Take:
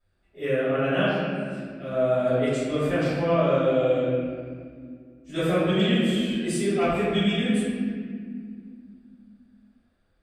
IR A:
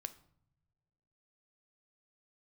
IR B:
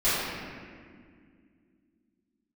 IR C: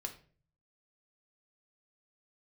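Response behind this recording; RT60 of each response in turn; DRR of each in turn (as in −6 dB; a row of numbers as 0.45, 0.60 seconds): B; non-exponential decay, 2.1 s, 0.45 s; 10.5, −16.0, 4.0 decibels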